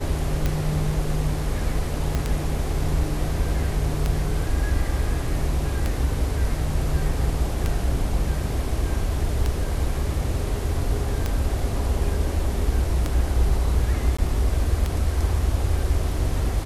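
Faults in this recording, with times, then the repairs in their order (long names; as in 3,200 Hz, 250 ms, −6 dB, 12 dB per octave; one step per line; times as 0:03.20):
scratch tick 33 1/3 rpm −10 dBFS
0:02.15: click −12 dBFS
0:14.17–0:14.19: drop-out 15 ms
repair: click removal
repair the gap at 0:14.17, 15 ms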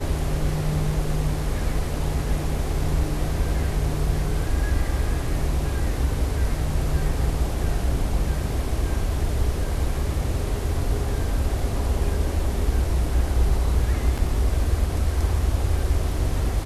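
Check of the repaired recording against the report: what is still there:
0:02.15: click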